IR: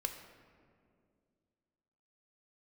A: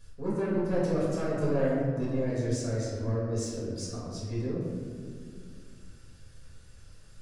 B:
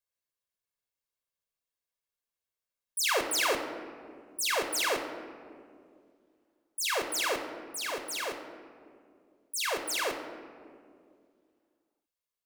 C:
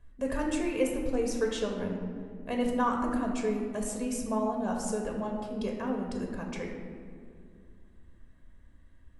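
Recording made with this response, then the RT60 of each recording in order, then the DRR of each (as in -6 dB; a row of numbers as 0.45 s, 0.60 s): B; 2.2 s, 2.2 s, 2.2 s; -7.5 dB, 5.5 dB, 0.5 dB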